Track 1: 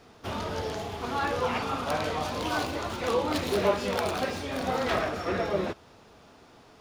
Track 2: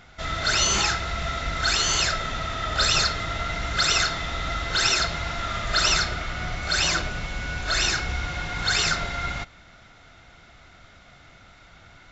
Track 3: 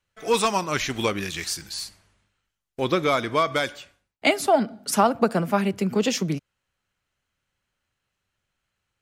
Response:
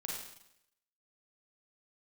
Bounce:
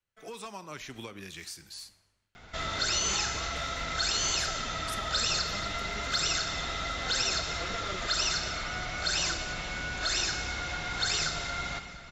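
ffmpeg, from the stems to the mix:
-filter_complex "[0:a]lowpass=f=8.3k:w=0.5412,lowpass=f=8.3k:w=1.3066,acrossover=split=1000[a][b];[a]aeval=exprs='val(0)*(1-0.7/2+0.7/2*cos(2*PI*9.3*n/s))':c=same[c];[b]aeval=exprs='val(0)*(1-0.7/2-0.7/2*cos(2*PI*9.3*n/s))':c=same[d];[c][d]amix=inputs=2:normalize=0,adelay=2350,volume=-0.5dB[e];[1:a]adelay=2350,volume=-3.5dB,asplit=3[f][g][h];[g]volume=-7dB[i];[h]volume=-16dB[j];[2:a]acompressor=threshold=-27dB:ratio=6,volume=-11.5dB,asplit=3[k][l][m];[l]volume=-16.5dB[n];[m]apad=whole_len=403652[o];[e][o]sidechaincompress=threshold=-53dB:ratio=8:attack=16:release=1050[p];[3:a]atrim=start_sample=2205[q];[i][n]amix=inputs=2:normalize=0[r];[r][q]afir=irnorm=-1:irlink=0[s];[j]aecho=0:1:232|464|696|928|1160|1392|1624|1856:1|0.54|0.292|0.157|0.085|0.0459|0.0248|0.0134[t];[p][f][k][s][t]amix=inputs=5:normalize=0,acrossover=split=190|940|3500[u][v][w][x];[u]acompressor=threshold=-41dB:ratio=4[y];[v]acompressor=threshold=-41dB:ratio=4[z];[w]acompressor=threshold=-36dB:ratio=4[aa];[x]acompressor=threshold=-29dB:ratio=4[ab];[y][z][aa][ab]amix=inputs=4:normalize=0"

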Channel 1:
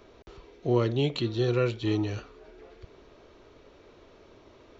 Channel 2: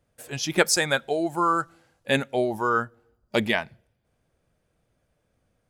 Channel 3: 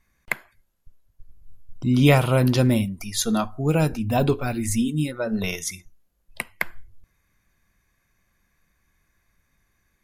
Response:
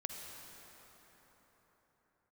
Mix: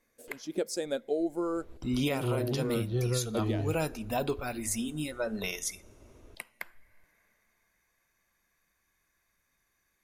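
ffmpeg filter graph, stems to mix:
-filter_complex "[0:a]aemphasis=mode=reproduction:type=bsi,adelay=1550,volume=-6.5dB[a];[1:a]equalizer=f=125:t=o:w=1:g=-11,equalizer=f=250:t=o:w=1:g=11,equalizer=f=500:t=o:w=1:g=10,equalizer=f=1k:t=o:w=1:g=-10,equalizer=f=2k:t=o:w=1:g=-8,volume=-10.5dB[b];[2:a]bass=f=250:g=-10,treble=f=4k:g=3,volume=-5.5dB,asplit=2[c][d];[d]volume=-22.5dB[e];[3:a]atrim=start_sample=2205[f];[e][f]afir=irnorm=-1:irlink=0[g];[a][b][c][g]amix=inputs=4:normalize=0,alimiter=limit=-20dB:level=0:latency=1:release=454"

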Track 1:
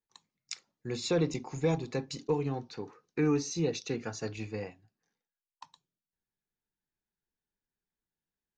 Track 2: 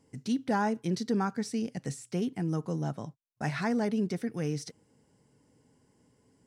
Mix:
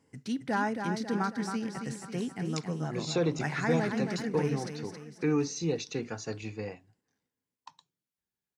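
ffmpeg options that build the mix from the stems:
-filter_complex "[0:a]adelay=2050,volume=0dB[a];[1:a]equalizer=f=1.7k:w=0.94:g=6.5,volume=-3.5dB,asplit=2[b][c];[c]volume=-6.5dB,aecho=0:1:272|544|816|1088|1360|1632|1904:1|0.5|0.25|0.125|0.0625|0.0312|0.0156[d];[a][b][d]amix=inputs=3:normalize=0,highpass=52"

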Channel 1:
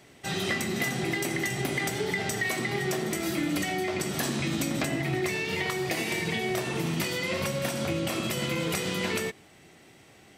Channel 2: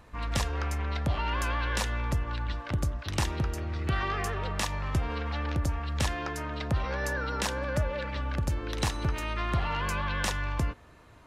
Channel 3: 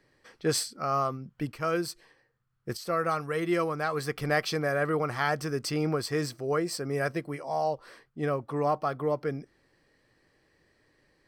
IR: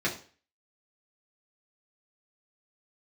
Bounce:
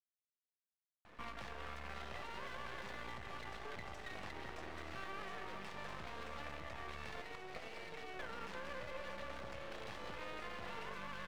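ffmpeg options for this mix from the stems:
-filter_complex "[0:a]lowshelf=f=380:t=q:w=3:g=-8,adelay=1650,volume=-10dB[a];[1:a]highpass=f=220:p=1,alimiter=level_in=3.5dB:limit=-24dB:level=0:latency=1:release=20,volume=-3.5dB,adelay=1050,volume=-1dB,asplit=3[b][c][d];[b]atrim=end=7.22,asetpts=PTS-STARTPTS,afade=t=out:st=7.216:d=0.004:c=hsin[e];[c]atrim=start=7.22:end=8.19,asetpts=PTS-STARTPTS,volume=0[f];[d]atrim=start=8.19,asetpts=PTS-STARTPTS,afade=t=in:d=0.004:c=hsin[g];[e][f][g]concat=n=3:v=0:a=1,asplit=2[h][i];[i]volume=-15.5dB[j];[3:a]atrim=start_sample=2205[k];[j][k]afir=irnorm=-1:irlink=0[l];[a][h][l]amix=inputs=3:normalize=0,lowpass=3.2k,acrossover=split=670|1400[m][n][o];[m]acompressor=threshold=-48dB:ratio=4[p];[n]acompressor=threshold=-47dB:ratio=4[q];[o]acompressor=threshold=-50dB:ratio=4[r];[p][q][r]amix=inputs=3:normalize=0,aeval=exprs='max(val(0),0)':c=same"

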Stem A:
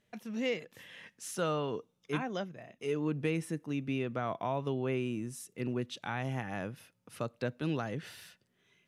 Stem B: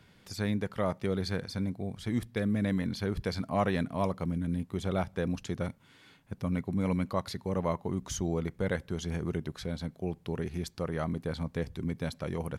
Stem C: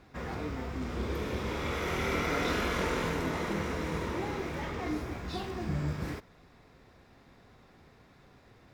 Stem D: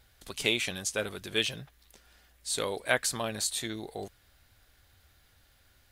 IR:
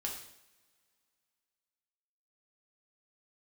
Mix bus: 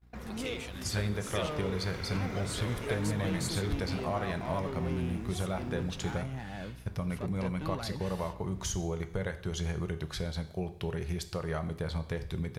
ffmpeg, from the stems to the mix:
-filter_complex "[0:a]asoftclip=type=tanh:threshold=-33dB,volume=-2.5dB,asplit=2[a][b];[b]volume=-17dB[c];[1:a]equalizer=f=260:t=o:w=0.63:g=-13,acompressor=threshold=-36dB:ratio=6,adelay=550,volume=1.5dB,asplit=2[d][e];[e]volume=-4.5dB[f];[2:a]aeval=exprs='val(0)+0.00501*(sin(2*PI*60*n/s)+sin(2*PI*2*60*n/s)/2+sin(2*PI*3*60*n/s)/3+sin(2*PI*4*60*n/s)/4+sin(2*PI*5*60*n/s)/5)':c=same,acompressor=threshold=-42dB:ratio=2,volume=-5.5dB,asplit=2[g][h];[h]volume=-12dB[i];[3:a]alimiter=limit=-17dB:level=0:latency=1:release=419,volume=-8.5dB[j];[4:a]atrim=start_sample=2205[k];[c][f][i]amix=inputs=3:normalize=0[l];[l][k]afir=irnorm=-1:irlink=0[m];[a][d][g][j][m]amix=inputs=5:normalize=0,agate=range=-28dB:threshold=-49dB:ratio=16:detection=peak,lowshelf=f=120:g=4"

